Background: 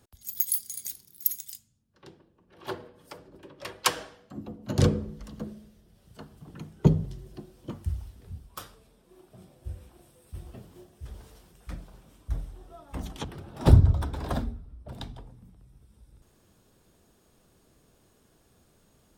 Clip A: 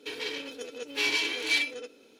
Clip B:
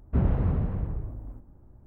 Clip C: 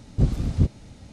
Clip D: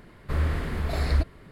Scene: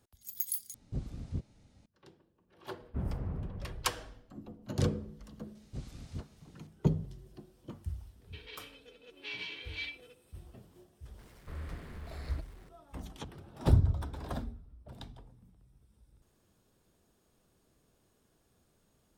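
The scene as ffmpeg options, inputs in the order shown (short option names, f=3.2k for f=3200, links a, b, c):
-filter_complex "[3:a]asplit=2[a][b];[0:a]volume=-8dB[c];[b]tiltshelf=f=1.1k:g=-5.5[d];[1:a]lowpass=f=3.4k:t=q:w=1.6[e];[4:a]aeval=exprs='val(0)+0.5*0.0106*sgn(val(0))':c=same[f];[c]asplit=2[g][h];[g]atrim=end=0.744[i];[a]atrim=end=1.12,asetpts=PTS-STARTPTS,volume=-17dB[j];[h]atrim=start=1.856[k];[2:a]atrim=end=1.86,asetpts=PTS-STARTPTS,volume=-12dB,afade=t=in:d=0.004:c=hsin,afade=t=out:st=1.856:d=0.004:c=hsin,adelay=2810[l];[d]atrim=end=1.12,asetpts=PTS-STARTPTS,volume=-16.5dB,afade=t=in:d=0.004:c=hsin,afade=t=out:st=1.116:d=0.004:c=hsin,adelay=5550[m];[e]atrim=end=2.19,asetpts=PTS-STARTPTS,volume=-17dB,afade=t=in:d=0.004:c=hsin,afade=t=out:st=2.186:d=0.004:c=hsin,adelay=8270[n];[f]atrim=end=1.51,asetpts=PTS-STARTPTS,volume=-17.5dB,afade=t=in:d=0.004:c=hsin,afade=t=out:st=1.506:d=0.004:c=hsin,adelay=11180[o];[i][j]acrossfade=d=0.004:c1=hsin:c2=hsin[p];[p][k]acrossfade=d=0.004:c1=hsin:c2=hsin[q];[q][l][m][n][o]amix=inputs=5:normalize=0"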